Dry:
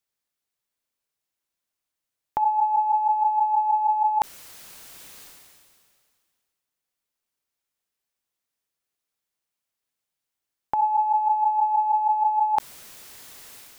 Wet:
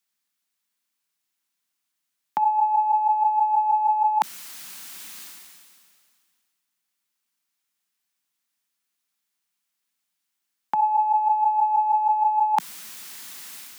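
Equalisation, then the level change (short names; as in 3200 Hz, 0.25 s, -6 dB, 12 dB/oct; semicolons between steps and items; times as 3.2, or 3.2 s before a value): steep high-pass 160 Hz 48 dB/oct; bell 500 Hz -12 dB 1.2 oct; +5.5 dB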